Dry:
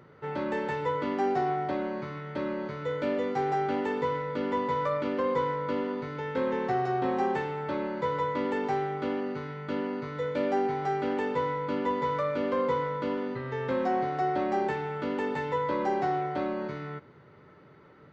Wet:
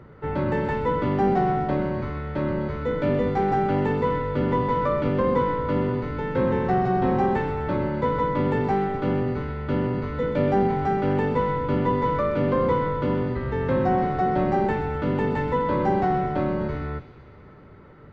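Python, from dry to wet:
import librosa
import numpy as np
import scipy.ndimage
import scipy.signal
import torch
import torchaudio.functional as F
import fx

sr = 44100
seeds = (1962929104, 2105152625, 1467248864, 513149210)

y = fx.octave_divider(x, sr, octaves=1, level_db=2.0)
y = fx.high_shelf(y, sr, hz=3600.0, db=-11.0)
y = fx.echo_wet_highpass(y, sr, ms=127, feedback_pct=72, hz=2600.0, wet_db=-9.0)
y = y * librosa.db_to_amplitude(5.5)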